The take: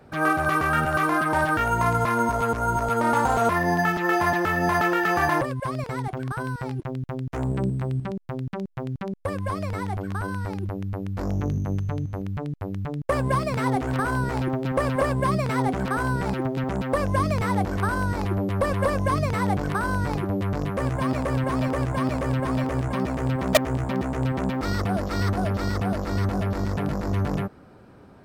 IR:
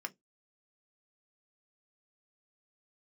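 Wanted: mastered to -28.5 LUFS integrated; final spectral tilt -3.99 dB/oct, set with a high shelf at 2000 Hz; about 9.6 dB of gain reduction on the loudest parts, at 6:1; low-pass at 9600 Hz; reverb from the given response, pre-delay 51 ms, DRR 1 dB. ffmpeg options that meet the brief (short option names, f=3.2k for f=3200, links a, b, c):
-filter_complex "[0:a]lowpass=9.6k,highshelf=f=2k:g=-5,acompressor=threshold=-25dB:ratio=6,asplit=2[a][b];[1:a]atrim=start_sample=2205,adelay=51[c];[b][c]afir=irnorm=-1:irlink=0,volume=-1dB[d];[a][d]amix=inputs=2:normalize=0"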